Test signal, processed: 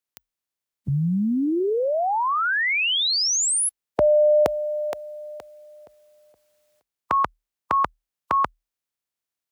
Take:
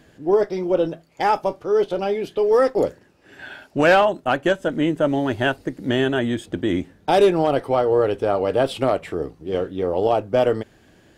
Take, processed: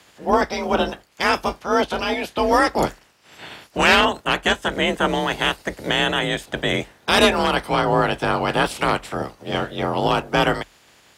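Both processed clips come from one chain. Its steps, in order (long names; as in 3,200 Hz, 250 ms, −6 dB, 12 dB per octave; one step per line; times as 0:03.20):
ceiling on every frequency bin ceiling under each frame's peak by 22 dB
frequency shifter +38 Hz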